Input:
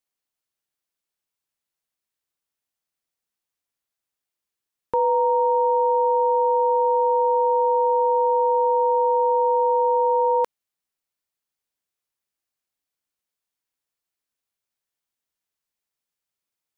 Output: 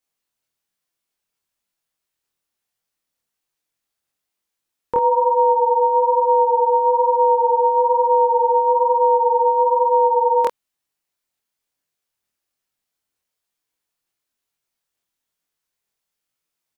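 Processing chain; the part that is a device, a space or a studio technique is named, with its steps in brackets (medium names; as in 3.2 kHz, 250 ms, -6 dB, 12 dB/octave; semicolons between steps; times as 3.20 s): double-tracked vocal (doubling 25 ms -2 dB; chorus 1.1 Hz, delay 18 ms, depth 7 ms); trim +6 dB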